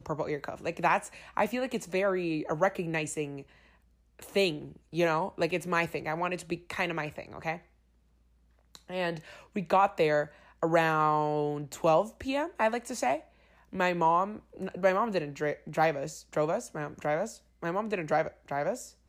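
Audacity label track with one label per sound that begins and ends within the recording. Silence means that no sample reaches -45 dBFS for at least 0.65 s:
4.190000	7.590000	sound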